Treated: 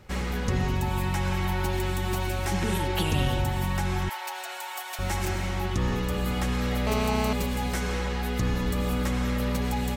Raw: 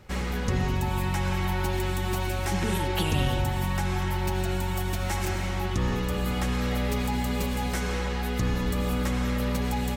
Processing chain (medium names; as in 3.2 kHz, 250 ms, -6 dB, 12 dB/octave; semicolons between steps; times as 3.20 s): 4.09–4.99 s: high-pass 660 Hz 24 dB/octave; 6.87–7.33 s: mobile phone buzz -29 dBFS